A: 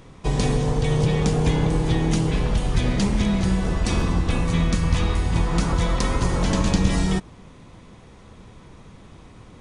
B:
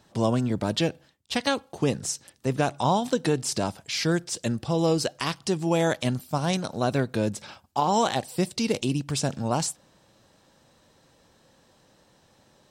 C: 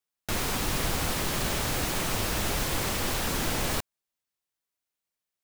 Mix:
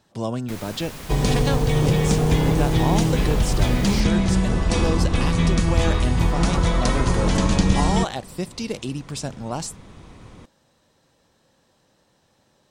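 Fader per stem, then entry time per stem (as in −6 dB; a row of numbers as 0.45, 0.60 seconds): +1.5, −3.0, −9.0 decibels; 0.85, 0.00, 0.20 seconds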